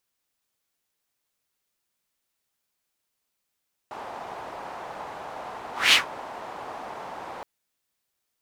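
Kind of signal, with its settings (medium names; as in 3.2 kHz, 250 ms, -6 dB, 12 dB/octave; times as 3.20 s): whoosh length 3.52 s, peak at 2.02 s, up 0.21 s, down 0.14 s, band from 830 Hz, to 3.1 kHz, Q 2.3, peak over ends 21.5 dB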